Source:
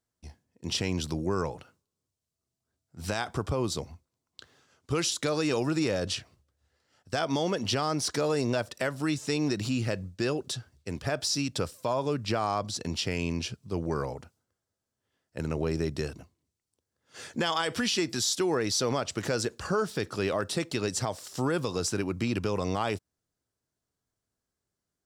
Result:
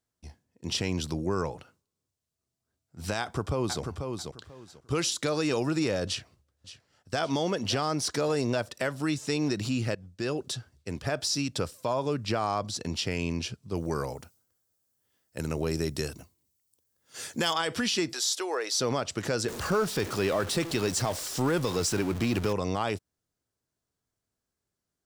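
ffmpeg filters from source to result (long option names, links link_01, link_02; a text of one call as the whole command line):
ffmpeg -i in.wav -filter_complex "[0:a]asplit=2[link_01][link_02];[link_02]afade=type=in:start_time=3.2:duration=0.01,afade=type=out:start_time=3.82:duration=0.01,aecho=0:1:490|980|1470:0.530884|0.106177|0.0212354[link_03];[link_01][link_03]amix=inputs=2:normalize=0,asplit=2[link_04][link_05];[link_05]afade=type=in:start_time=6.07:duration=0.01,afade=type=out:start_time=7.21:duration=0.01,aecho=0:1:570|1140|1710|2280|2850:0.188365|0.0941825|0.0470912|0.0235456|0.0117728[link_06];[link_04][link_06]amix=inputs=2:normalize=0,asettb=1/sr,asplit=3[link_07][link_08][link_09];[link_07]atrim=end=13.754[link_10];[link_08]atrim=start=13.75:end=17.53,asetpts=PTS-STARTPTS,afade=type=in:duration=0.004:curve=qsin,afade=type=out:start_time=3.776:duration=0.004:curve=qsin,aemphasis=mode=production:type=50fm[link_11];[link_09]atrim=start=17.526[link_12];[link_10][link_11]acrossfade=duration=0.004:curve1=hsin:curve2=qsin[link_13];[link_13][link_12]acrossfade=duration=0.004:curve1=qsin:curve2=hsin,asettb=1/sr,asplit=3[link_14][link_15][link_16];[link_14]atrim=end=18.134[link_17];[link_15]atrim=start=18.13:end=18.8,asetpts=PTS-STARTPTS,afade=type=in:duration=0.004:curve=qsin,afade=type=out:start_time=0.666:duration=0.004:curve=qsin,highpass=frequency=440:width=0.5412,highpass=frequency=440:width=1.3066[link_18];[link_16]atrim=start=18.796[link_19];[link_17][link_18]acrossfade=duration=0.004:curve1=hsin:curve2=qsin[link_20];[link_20][link_19]acrossfade=duration=0.004:curve1=qsin:curve2=hsin,asettb=1/sr,asplit=3[link_21][link_22][link_23];[link_21]atrim=end=19.484[link_24];[link_22]atrim=start=19.48:end=22.53,asetpts=PTS-STARTPTS,afade=type=in:duration=0.004:curve=qsin,afade=type=out:start_time=3.046:duration=0.004:curve=qsin,aeval=exprs='val(0)+0.5*0.0224*sgn(val(0))':channel_layout=same[link_25];[link_23]atrim=start=22.526[link_26];[link_24][link_25]acrossfade=duration=0.004:curve1=hsin:curve2=qsin[link_27];[link_27][link_26]acrossfade=duration=0.004:curve1=qsin:curve2=hsin,asplit=2[link_28][link_29];[link_28]atrim=end=9.95,asetpts=PTS-STARTPTS,afade=type=out:start_time=9.946:duration=0.004:curve=hsin:silence=0.188365[link_30];[link_29]atrim=start=9.95,asetpts=PTS-STARTPTS,afade=type=in:duration=0.44:silence=0.188365[link_31];[link_30][link_31]concat=n=2:v=0:a=1" out.wav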